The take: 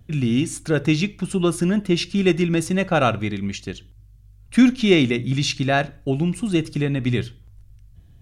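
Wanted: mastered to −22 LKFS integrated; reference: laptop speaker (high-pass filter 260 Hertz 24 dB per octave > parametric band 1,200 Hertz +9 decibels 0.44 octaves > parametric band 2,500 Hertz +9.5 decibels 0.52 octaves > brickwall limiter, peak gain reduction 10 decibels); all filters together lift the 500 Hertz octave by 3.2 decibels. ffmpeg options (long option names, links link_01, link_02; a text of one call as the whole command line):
ffmpeg -i in.wav -af "highpass=frequency=260:width=0.5412,highpass=frequency=260:width=1.3066,equalizer=frequency=500:width_type=o:gain=4.5,equalizer=frequency=1200:width_type=o:width=0.44:gain=9,equalizer=frequency=2500:width_type=o:width=0.52:gain=9.5,volume=1dB,alimiter=limit=-9.5dB:level=0:latency=1" out.wav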